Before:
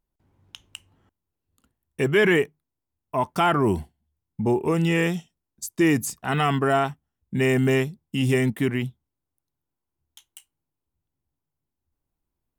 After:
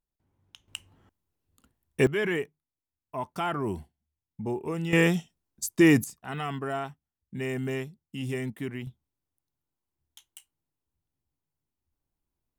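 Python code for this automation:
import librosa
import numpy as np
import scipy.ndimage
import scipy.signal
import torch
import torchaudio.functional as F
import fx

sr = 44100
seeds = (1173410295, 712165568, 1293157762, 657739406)

y = fx.gain(x, sr, db=fx.steps((0.0, -9.0), (0.68, 1.5), (2.07, -9.5), (4.93, 1.0), (6.04, -11.0), (8.87, -3.0)))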